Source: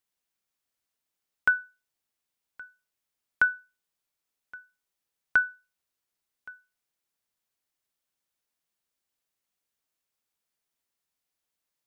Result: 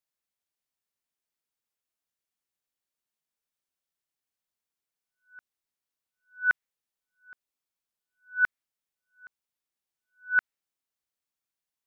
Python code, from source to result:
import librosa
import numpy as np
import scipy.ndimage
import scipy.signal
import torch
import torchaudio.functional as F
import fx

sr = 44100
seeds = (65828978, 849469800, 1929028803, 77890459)

y = np.flip(x).copy()
y = fx.dynamic_eq(y, sr, hz=1900.0, q=1.2, threshold_db=-37.0, ratio=4.0, max_db=6)
y = y * librosa.db_to_amplitude(-5.5)